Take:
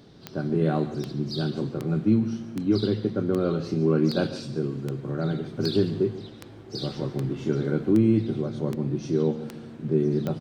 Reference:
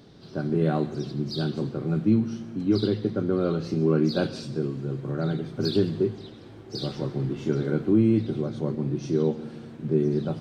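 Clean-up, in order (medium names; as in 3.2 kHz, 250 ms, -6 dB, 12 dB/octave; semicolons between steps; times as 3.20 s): de-click; inverse comb 143 ms -16 dB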